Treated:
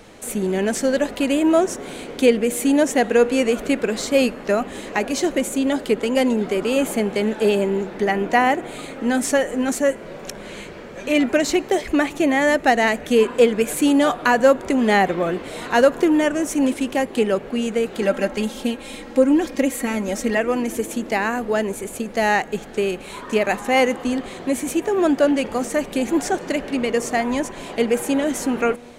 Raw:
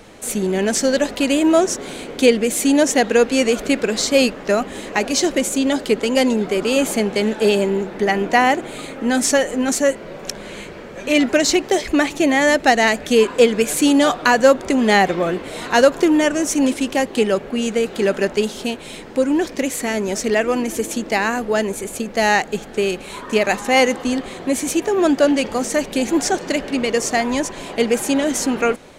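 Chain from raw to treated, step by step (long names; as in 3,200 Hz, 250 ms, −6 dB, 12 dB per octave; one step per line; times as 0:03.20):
0:18.02–0:20.37: comb filter 3.7 ms, depth 67%
dynamic equaliser 5,200 Hz, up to −8 dB, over −38 dBFS, Q 0.96
tuned comb filter 240 Hz, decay 1.4 s, mix 40%
level +2.5 dB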